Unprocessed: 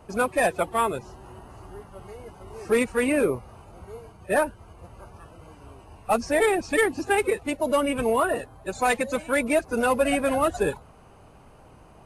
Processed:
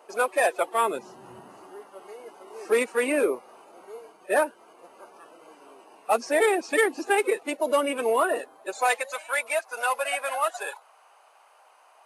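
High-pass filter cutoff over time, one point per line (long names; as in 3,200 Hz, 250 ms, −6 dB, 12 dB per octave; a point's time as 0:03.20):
high-pass filter 24 dB per octave
0:00.65 390 Hz
0:01.33 130 Hz
0:01.77 310 Hz
0:08.56 310 Hz
0:09.12 690 Hz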